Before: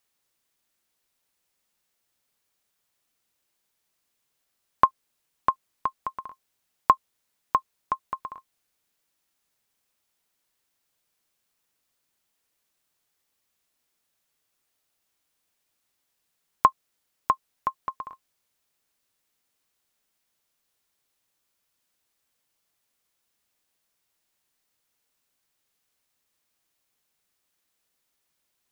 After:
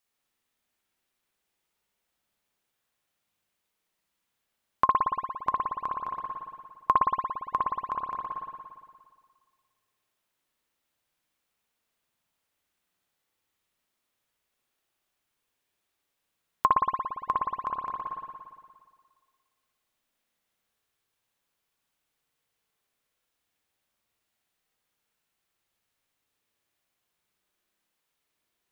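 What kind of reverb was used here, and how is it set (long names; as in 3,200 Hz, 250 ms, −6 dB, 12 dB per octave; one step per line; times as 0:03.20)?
spring reverb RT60 1.8 s, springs 57 ms, chirp 25 ms, DRR −3.5 dB
level −5.5 dB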